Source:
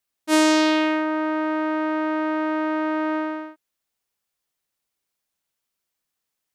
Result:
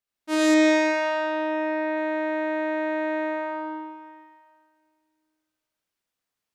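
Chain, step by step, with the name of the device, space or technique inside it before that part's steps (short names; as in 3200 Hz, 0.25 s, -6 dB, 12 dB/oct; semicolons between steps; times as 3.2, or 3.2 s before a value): swimming-pool hall (reverb RT60 2.1 s, pre-delay 47 ms, DRR -5.5 dB; high shelf 5700 Hz -7 dB); 0.54–1.97 LPF 6200 Hz 12 dB/oct; gain -6.5 dB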